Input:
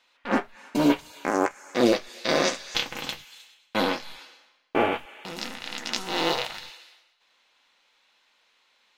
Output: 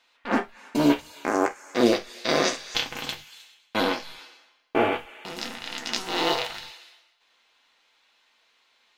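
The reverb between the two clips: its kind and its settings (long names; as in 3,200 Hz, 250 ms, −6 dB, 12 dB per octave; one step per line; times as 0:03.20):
reverb whose tail is shaped and stops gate 90 ms falling, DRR 8.5 dB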